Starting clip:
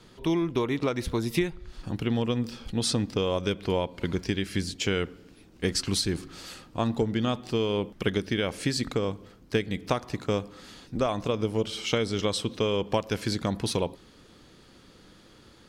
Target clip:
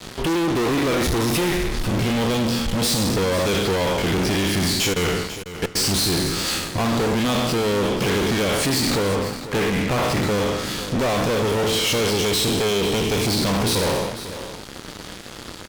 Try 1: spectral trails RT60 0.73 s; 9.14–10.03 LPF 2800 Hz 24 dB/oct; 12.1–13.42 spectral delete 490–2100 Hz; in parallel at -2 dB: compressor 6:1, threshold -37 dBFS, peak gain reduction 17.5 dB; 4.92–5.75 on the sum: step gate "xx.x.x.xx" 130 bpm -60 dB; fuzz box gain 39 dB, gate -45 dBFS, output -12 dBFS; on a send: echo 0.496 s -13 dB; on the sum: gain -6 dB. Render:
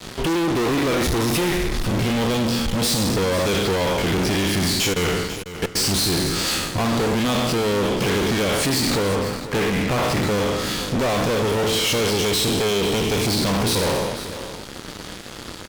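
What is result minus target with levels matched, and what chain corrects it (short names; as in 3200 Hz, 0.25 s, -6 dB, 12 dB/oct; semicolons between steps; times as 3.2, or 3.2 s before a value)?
compressor: peak gain reduction -9 dB
spectral trails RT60 0.73 s; 9.14–10.03 LPF 2800 Hz 24 dB/oct; 12.1–13.42 spectral delete 490–2100 Hz; in parallel at -2 dB: compressor 6:1, threshold -47.5 dBFS, peak gain reduction 26 dB; 4.92–5.75 on the sum: step gate "xx.x.x.xx" 130 bpm -60 dB; fuzz box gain 39 dB, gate -45 dBFS, output -12 dBFS; on a send: echo 0.496 s -13 dB; on the sum: gain -6 dB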